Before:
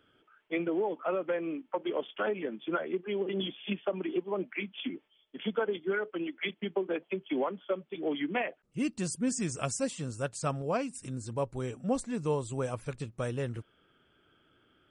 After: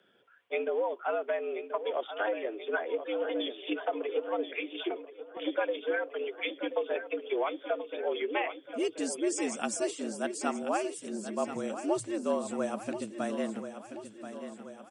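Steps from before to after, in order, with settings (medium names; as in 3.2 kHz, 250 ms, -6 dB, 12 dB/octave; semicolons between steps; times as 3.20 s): feedback delay 1032 ms, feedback 56%, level -10.5 dB; frequency shift +100 Hz; 4.84–5.37 s: three bands expanded up and down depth 100%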